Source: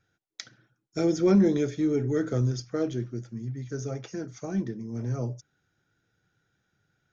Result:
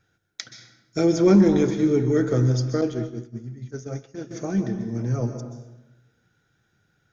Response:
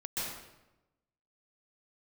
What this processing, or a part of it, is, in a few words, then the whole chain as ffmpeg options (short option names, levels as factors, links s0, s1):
saturated reverb return: -filter_complex "[0:a]asplit=2[s0][s1];[1:a]atrim=start_sample=2205[s2];[s1][s2]afir=irnorm=-1:irlink=0,asoftclip=type=tanh:threshold=0.237,volume=0.355[s3];[s0][s3]amix=inputs=2:normalize=0,asettb=1/sr,asplit=3[s4][s5][s6];[s4]atrim=end=2.814[s7];[s5]atrim=start=2.81:end=4.31,asetpts=PTS-STARTPTS,afade=t=in:d=0.004:c=qsin,afade=t=out:st=1.496:d=0.004:c=qsin,agate=range=0.0224:threshold=0.0562:ratio=3:detection=peak[s8];[s6]atrim=start=4.306[s9];[s7][s8]acrossfade=d=0.004:c1=hsin:c2=qsin[s10];[s10][s9]acrossfade=d=0.004:c1=qsin:c2=hsin,volume=1.5"